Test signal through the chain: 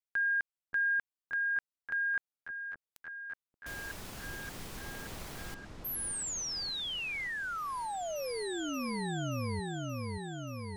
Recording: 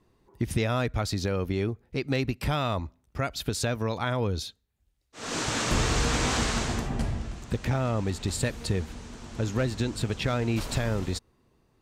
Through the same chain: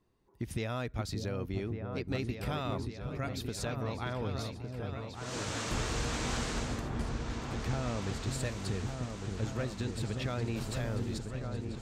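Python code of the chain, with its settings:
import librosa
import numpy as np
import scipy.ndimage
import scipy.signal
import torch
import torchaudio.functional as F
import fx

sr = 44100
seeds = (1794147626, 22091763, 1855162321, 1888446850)

y = fx.echo_opening(x, sr, ms=578, hz=400, octaves=2, feedback_pct=70, wet_db=-3)
y = y * librosa.db_to_amplitude(-9.0)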